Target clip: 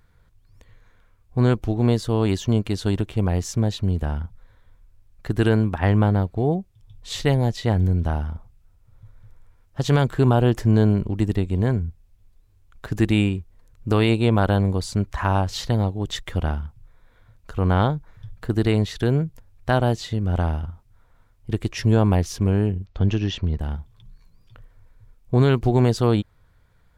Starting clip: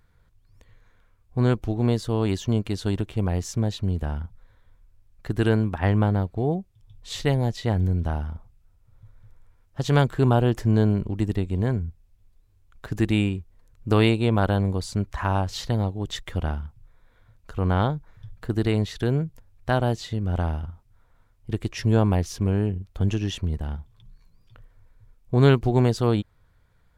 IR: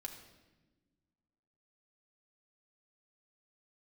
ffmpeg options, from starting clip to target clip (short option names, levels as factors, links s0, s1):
-filter_complex "[0:a]asettb=1/sr,asplit=3[s0][s1][s2];[s0]atrim=end=22.864[s3];[s1]atrim=start=22.86:end=23.59,asetpts=PTS-STARTPTS,afade=t=in:d=0.004:c=qsin,afade=t=out:st=0.726:d=0.004:c=qsin,lowpass=f=5500:w=0.5412,lowpass=f=5500:w=1.3066[s4];[s2]atrim=start=23.586[s5];[s3][s4]acrossfade=d=0.004:c1=hsin:c2=qsin[s6];[s6][s5]acrossfade=d=0.004:c1=qsin:c2=hsin,alimiter=level_in=2.37:limit=0.891:release=50:level=0:latency=1,volume=0.596"